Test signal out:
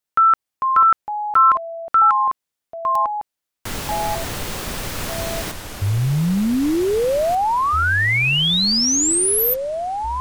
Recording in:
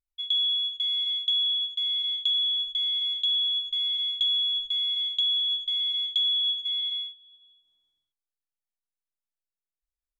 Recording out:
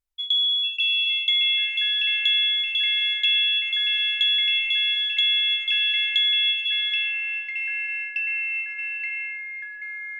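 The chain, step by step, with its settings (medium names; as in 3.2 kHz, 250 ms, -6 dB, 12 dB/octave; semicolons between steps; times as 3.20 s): ever faster or slower copies 402 ms, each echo -4 st, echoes 3, each echo -6 dB; trim +3.5 dB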